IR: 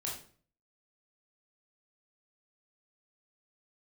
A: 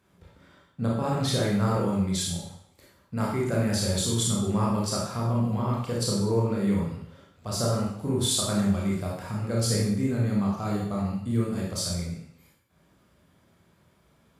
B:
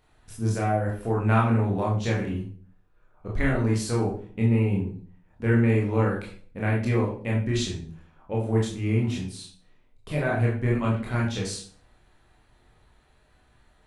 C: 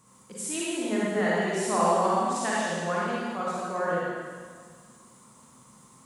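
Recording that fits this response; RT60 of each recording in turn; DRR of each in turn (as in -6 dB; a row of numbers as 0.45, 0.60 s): B; 0.70, 0.45, 1.8 s; -4.0, -4.0, -7.0 dB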